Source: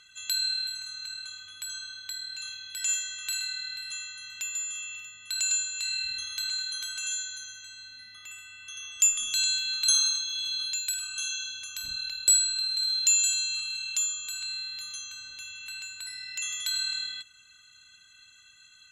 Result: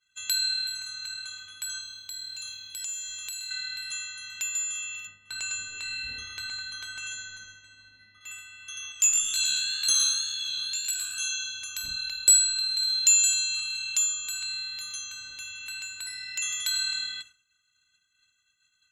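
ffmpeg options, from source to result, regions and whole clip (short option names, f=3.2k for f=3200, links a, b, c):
-filter_complex "[0:a]asettb=1/sr,asplit=3[a][b][c];[a]atrim=end=1.814[d];[b]atrim=start=1.81:end=3.51,asetpts=PTS-STARTPTS,afade=t=in:d=0.004:c=qsin,afade=t=out:st=1.696:d=0.004:c=qsin,equalizer=f=1.7k:w=1.4:g=-10.5,acompressor=threshold=-35dB:ratio=6:attack=3.2:release=140:knee=1:detection=peak,acrusher=bits=8:mode=log:mix=0:aa=0.000001[e];[c]atrim=start=3.506[f];[d][e]acrossfade=d=0.004:c1=hsin:c2=qsin[g];[g][f]acrossfade=d=0.004:c1=qsin:c2=hsin,asettb=1/sr,asplit=3[h][i][j];[h]atrim=end=5.074[k];[i]atrim=start=5.07:end=8.21,asetpts=PTS-STARTPTS,afade=t=in:d=0.004:c=qsin,afade=t=out:st=3.136:d=0.004:c=qsin,lowpass=f=1k:p=1,acontrast=53,asplit=2[l][m];[m]adelay=18,volume=-13dB[n];[l][n]amix=inputs=2:normalize=0,atrim=end_sample=138474[o];[j]atrim=start=8.206[p];[k][o]acrossfade=d=0.004:c1=hsin:c2=qsin[q];[q][p]acrossfade=d=0.004:c1=qsin:c2=hsin,asettb=1/sr,asplit=3[r][s][t];[r]atrim=end=8.924[u];[s]atrim=start=8.92:end=11.2,asetpts=PTS-STARTPTS,afade=t=in:d=0.004:c=qsin,afade=t=out:st=2.276:d=0.004:c=qsin,asoftclip=type=hard:threshold=-14dB,asplit=5[v][w][x][y][z];[w]adelay=113,afreqshift=73,volume=-5dB[aa];[x]adelay=226,afreqshift=146,volume=-14.4dB[ab];[y]adelay=339,afreqshift=219,volume=-23.7dB[ac];[z]adelay=452,afreqshift=292,volume=-33.1dB[ad];[v][aa][ab][ac][ad]amix=inputs=5:normalize=0,atrim=end_sample=100548,flanger=delay=16:depth=5.8:speed=2[ae];[t]atrim=start=11.196[af];[u][ae]acrossfade=d=0.004:c1=hsin:c2=qsin[ag];[ag][af]acrossfade=d=0.004:c1=qsin:c2=hsin,agate=range=-33dB:threshold=-44dB:ratio=3:detection=peak,equalizer=f=3.8k:w=1.5:g=-2.5,volume=3.5dB"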